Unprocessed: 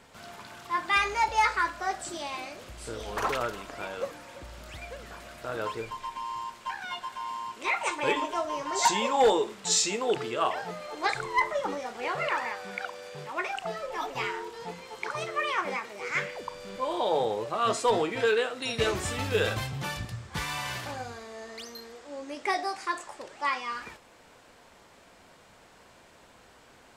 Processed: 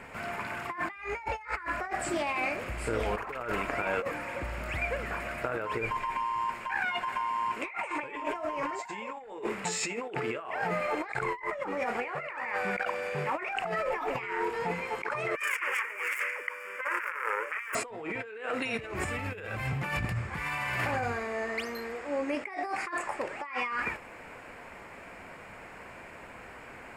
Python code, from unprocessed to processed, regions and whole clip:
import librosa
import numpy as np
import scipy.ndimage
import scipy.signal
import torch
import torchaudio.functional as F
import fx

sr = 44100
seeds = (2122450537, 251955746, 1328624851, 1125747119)

y = fx.chain(x, sr, fx.self_delay(depth_ms=0.69),
    fx.highpass(hz=520.0, slope=24),
    fx.fixed_phaser(hz=1700.0, stages=4), at=(15.35, 17.75))
y = fx.high_shelf_res(y, sr, hz=2900.0, db=-7.0, q=3.0)
y = fx.notch(y, sr, hz=6000.0, q=7.8)
y = fx.over_compress(y, sr, threshold_db=-37.0, ratio=-1.0)
y = y * 10.0 ** (2.5 / 20.0)